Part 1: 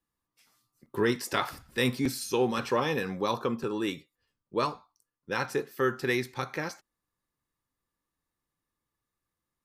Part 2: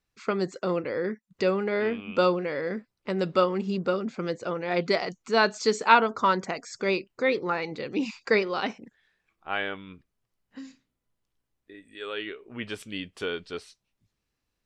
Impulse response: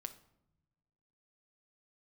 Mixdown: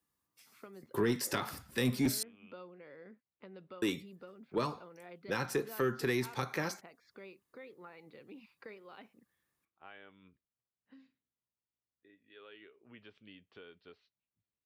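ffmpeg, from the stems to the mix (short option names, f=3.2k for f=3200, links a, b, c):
-filter_complex "[0:a]highshelf=f=8.4k:g=6.5,volume=0dB,asplit=3[a][b][c];[a]atrim=end=2.23,asetpts=PTS-STARTPTS,afade=t=out:st=2.226:d=0.004:c=hsin[d];[b]atrim=start=2.23:end=3.82,asetpts=PTS-STARTPTS,volume=0[e];[c]atrim=start=3.82,asetpts=PTS-STARTPTS,afade=t=in:d=0.004:c=hsin[f];[d][e][f]concat=n=3:v=0:a=1[g];[1:a]lowpass=f=3.9k:w=0.5412,lowpass=f=3.9k:w=1.3066,acompressor=threshold=-36dB:ratio=2.5,adelay=350,volume=-16.5dB[h];[g][h]amix=inputs=2:normalize=0,highpass=67,acrossover=split=330[i][j];[j]acompressor=threshold=-31dB:ratio=10[k];[i][k]amix=inputs=2:normalize=0,asoftclip=type=tanh:threshold=-20.5dB"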